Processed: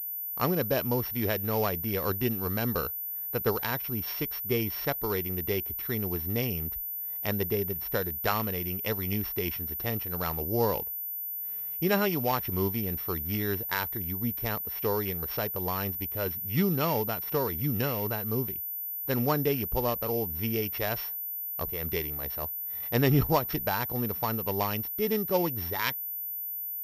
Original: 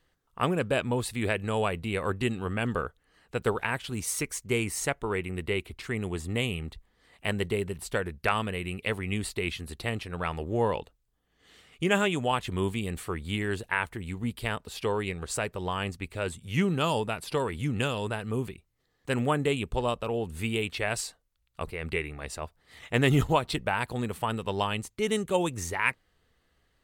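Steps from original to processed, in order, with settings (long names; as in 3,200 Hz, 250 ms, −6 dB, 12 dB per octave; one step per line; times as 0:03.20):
samples sorted by size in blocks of 8 samples
high-shelf EQ 3,700 Hz −10.5 dB
switching amplifier with a slow clock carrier 14,000 Hz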